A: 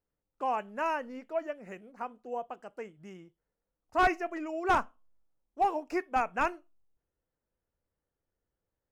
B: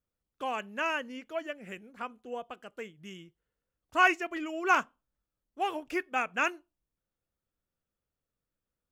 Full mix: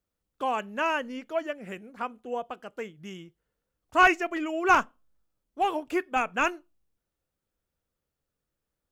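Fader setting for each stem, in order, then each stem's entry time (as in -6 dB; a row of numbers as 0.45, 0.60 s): -4.0, +2.5 dB; 0.00, 0.00 s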